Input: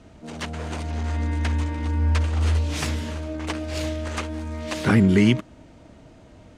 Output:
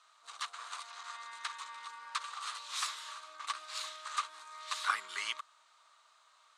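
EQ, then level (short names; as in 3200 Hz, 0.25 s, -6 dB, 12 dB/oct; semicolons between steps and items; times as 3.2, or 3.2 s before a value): ladder high-pass 1100 Hz, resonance 80%; bell 3900 Hz +11.5 dB 0.53 oct; bell 8300 Hz +11 dB 1.1 oct; -2.5 dB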